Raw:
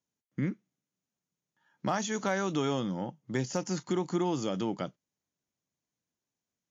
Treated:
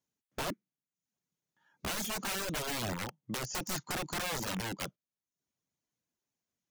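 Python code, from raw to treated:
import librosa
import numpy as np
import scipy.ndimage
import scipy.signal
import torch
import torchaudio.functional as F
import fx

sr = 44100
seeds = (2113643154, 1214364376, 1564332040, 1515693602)

y = (np.mod(10.0 ** (29.5 / 20.0) * x + 1.0, 2.0) - 1.0) / 10.0 ** (29.5 / 20.0)
y = fx.dereverb_blind(y, sr, rt60_s=0.55)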